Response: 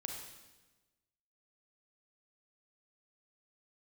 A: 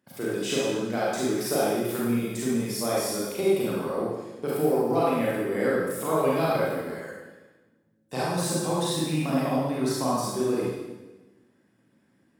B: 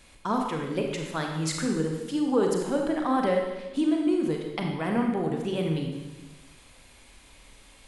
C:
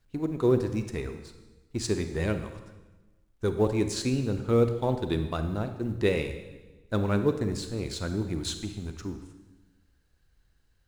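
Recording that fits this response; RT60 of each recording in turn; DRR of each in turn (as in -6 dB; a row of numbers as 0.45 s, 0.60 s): B; 1.2 s, 1.2 s, 1.2 s; -7.0 dB, 1.5 dB, 8.0 dB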